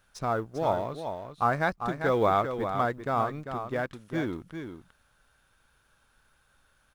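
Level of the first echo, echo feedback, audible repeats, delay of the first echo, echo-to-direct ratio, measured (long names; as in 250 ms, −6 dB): −8.0 dB, repeats not evenly spaced, 1, 396 ms, −8.0 dB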